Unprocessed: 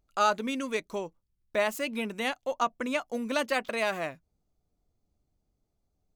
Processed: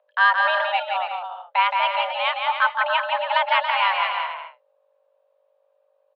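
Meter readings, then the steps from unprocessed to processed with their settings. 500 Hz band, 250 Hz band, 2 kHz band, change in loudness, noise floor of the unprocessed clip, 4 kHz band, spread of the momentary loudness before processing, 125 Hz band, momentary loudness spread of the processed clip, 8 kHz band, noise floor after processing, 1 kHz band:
+2.0 dB, under -40 dB, +12.5 dB, +9.5 dB, -79 dBFS, +12.0 dB, 9 LU, under -40 dB, 8 LU, under -25 dB, -66 dBFS, +12.5 dB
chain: hum 50 Hz, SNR 26 dB; bouncing-ball echo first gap 170 ms, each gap 0.65×, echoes 5; mistuned SSB +350 Hz 250–3200 Hz; trim +7.5 dB

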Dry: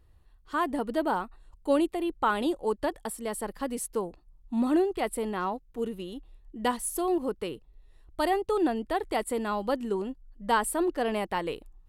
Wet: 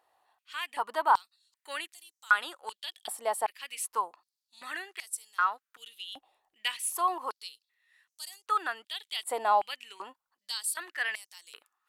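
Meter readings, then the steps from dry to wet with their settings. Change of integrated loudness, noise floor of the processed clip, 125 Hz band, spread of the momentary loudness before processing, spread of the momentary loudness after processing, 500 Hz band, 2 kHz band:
-2.0 dB, under -85 dBFS, under -25 dB, 12 LU, 18 LU, -11.0 dB, +4.0 dB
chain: step-sequenced high-pass 2.6 Hz 760–6000 Hz

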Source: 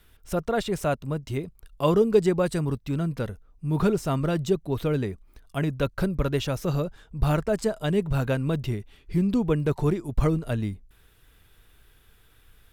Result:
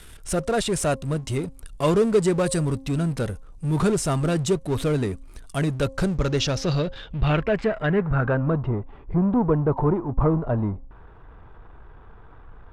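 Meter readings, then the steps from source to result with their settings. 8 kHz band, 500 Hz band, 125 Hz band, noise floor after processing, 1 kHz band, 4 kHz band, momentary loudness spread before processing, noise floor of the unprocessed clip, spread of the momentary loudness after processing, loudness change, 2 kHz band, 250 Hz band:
+10.0 dB, +2.0 dB, +3.0 dB, -46 dBFS, +3.5 dB, +5.5 dB, 10 LU, -58 dBFS, 9 LU, +2.5 dB, +4.5 dB, +2.5 dB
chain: power-law waveshaper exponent 0.7; de-hum 267.8 Hz, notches 4; low-pass sweep 9.2 kHz -> 980 Hz, 5.82–8.69 s; trim -1.5 dB

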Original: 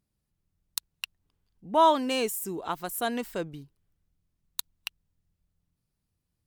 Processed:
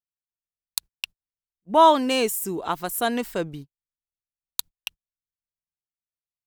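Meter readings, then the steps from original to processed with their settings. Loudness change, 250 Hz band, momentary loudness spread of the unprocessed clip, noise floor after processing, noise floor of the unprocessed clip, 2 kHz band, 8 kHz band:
+5.5 dB, +5.5 dB, 19 LU, under -85 dBFS, -82 dBFS, +5.5 dB, +5.5 dB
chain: gate -43 dBFS, range -37 dB; trim +5.5 dB

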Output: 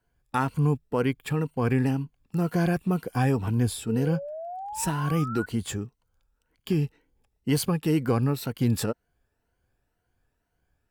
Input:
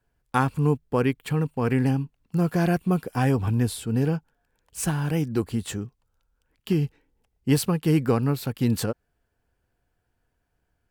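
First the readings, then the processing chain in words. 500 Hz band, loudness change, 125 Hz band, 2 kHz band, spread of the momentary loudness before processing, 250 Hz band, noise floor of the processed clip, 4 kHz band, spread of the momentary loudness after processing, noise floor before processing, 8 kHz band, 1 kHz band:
-2.0 dB, -2.0 dB, -2.0 dB, -1.5 dB, 9 LU, -2.0 dB, -77 dBFS, -1.0 dB, 9 LU, -76 dBFS, -1.0 dB, -1.0 dB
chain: drifting ripple filter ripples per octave 1.9, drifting +2 Hz, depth 7 dB; in parallel at -0.5 dB: peak limiter -16 dBFS, peak gain reduction 9.5 dB; on the sum: painted sound rise, 3.87–5.46 s, 430–1500 Hz -29 dBFS; trim -7 dB

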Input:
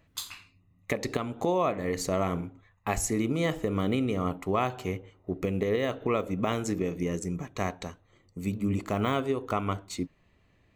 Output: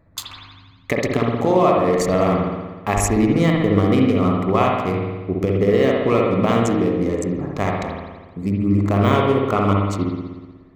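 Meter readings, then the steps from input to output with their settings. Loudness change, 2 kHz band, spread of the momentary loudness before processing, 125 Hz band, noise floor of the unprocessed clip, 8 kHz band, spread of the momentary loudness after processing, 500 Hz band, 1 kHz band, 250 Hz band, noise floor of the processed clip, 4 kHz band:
+11.5 dB, +9.5 dB, 11 LU, +12.5 dB, -66 dBFS, +6.0 dB, 12 LU, +11.5 dB, +11.0 dB, +12.0 dB, -46 dBFS, +7.5 dB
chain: local Wiener filter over 15 samples; spring tank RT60 1.3 s, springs 60 ms, chirp 25 ms, DRR -1 dB; trim +8 dB

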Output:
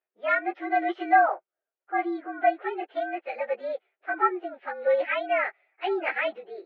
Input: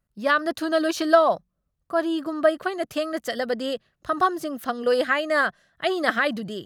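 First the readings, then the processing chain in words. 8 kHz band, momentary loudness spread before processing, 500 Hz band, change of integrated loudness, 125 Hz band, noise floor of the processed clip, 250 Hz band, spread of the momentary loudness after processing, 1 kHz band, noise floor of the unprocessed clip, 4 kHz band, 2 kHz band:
under -35 dB, 10 LU, -5.0 dB, -3.5 dB, no reading, under -85 dBFS, -8.5 dB, 12 LU, +0.5 dB, -78 dBFS, -12.5 dB, -3.5 dB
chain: frequency axis rescaled in octaves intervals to 112%; Chebyshev band-pass 360–3100 Hz, order 4

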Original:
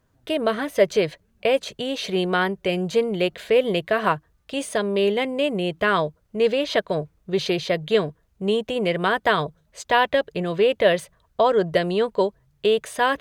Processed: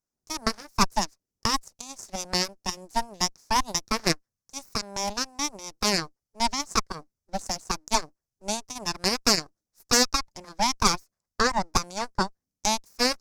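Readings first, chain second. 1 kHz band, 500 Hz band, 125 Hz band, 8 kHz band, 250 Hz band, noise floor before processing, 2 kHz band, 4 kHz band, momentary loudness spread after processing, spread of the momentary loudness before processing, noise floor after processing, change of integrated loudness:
-2.5 dB, -14.5 dB, -6.5 dB, +13.5 dB, -6.5 dB, -65 dBFS, -6.5 dB, +2.0 dB, 13 LU, 8 LU, under -85 dBFS, -4.5 dB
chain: full-wave rectifier; Chebyshev shaper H 3 -23 dB, 6 -22 dB, 7 -20 dB, 8 -24 dB, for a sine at -5.5 dBFS; resonant high shelf 4.2 kHz +9.5 dB, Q 3; trim -1.5 dB

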